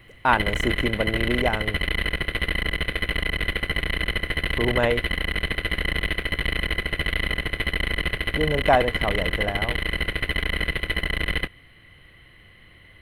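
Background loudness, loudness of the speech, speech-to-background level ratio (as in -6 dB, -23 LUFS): -25.5 LUFS, -26.0 LUFS, -0.5 dB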